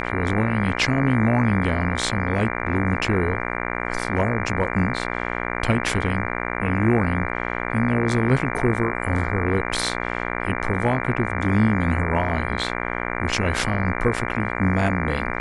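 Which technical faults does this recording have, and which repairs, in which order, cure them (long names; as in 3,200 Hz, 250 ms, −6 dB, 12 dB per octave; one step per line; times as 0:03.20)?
mains buzz 60 Hz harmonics 39 −27 dBFS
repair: hum removal 60 Hz, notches 39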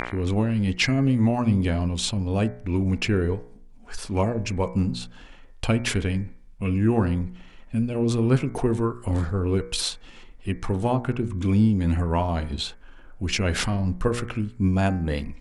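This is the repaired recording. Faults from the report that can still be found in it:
none of them is left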